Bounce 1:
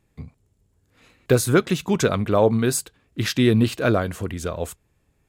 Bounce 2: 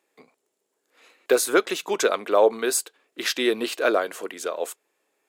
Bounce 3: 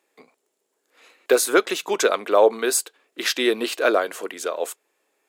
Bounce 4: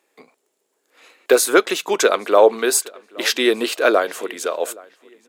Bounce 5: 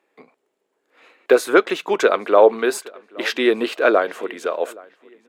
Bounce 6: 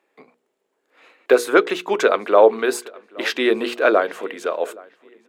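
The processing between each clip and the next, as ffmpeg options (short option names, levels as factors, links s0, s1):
-af "highpass=f=370:w=0.5412,highpass=f=370:w=1.3066,volume=1.12"
-af "equalizer=f=69:t=o:w=1.6:g=-12,volume=1.33"
-filter_complex "[0:a]asplit=2[s0][s1];[s1]adelay=821,lowpass=f=3300:p=1,volume=0.0668,asplit=2[s2][s3];[s3]adelay=821,lowpass=f=3300:p=1,volume=0.35[s4];[s0][s2][s4]amix=inputs=3:normalize=0,volume=1.5"
-af "bass=f=250:g=2,treble=f=4000:g=-14"
-af "bandreject=f=60:t=h:w=6,bandreject=f=120:t=h:w=6,bandreject=f=180:t=h:w=6,bandreject=f=240:t=h:w=6,bandreject=f=300:t=h:w=6,bandreject=f=360:t=h:w=6,bandreject=f=420:t=h:w=6,bandreject=f=480:t=h:w=6"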